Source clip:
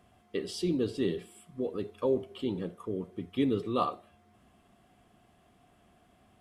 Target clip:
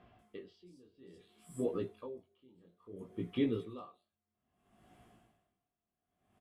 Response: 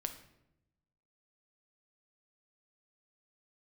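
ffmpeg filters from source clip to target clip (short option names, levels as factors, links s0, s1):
-filter_complex "[0:a]acrossover=split=4400[s0][s1];[s1]adelay=190[s2];[s0][s2]amix=inputs=2:normalize=0,flanger=delay=17:depth=6.4:speed=0.59,asplit=2[s3][s4];[s4]alimiter=level_in=2:limit=0.0631:level=0:latency=1,volume=0.501,volume=1[s5];[s3][s5]amix=inputs=2:normalize=0,aeval=exprs='val(0)*pow(10,-31*(0.5-0.5*cos(2*PI*0.6*n/s))/20)':c=same,volume=0.794"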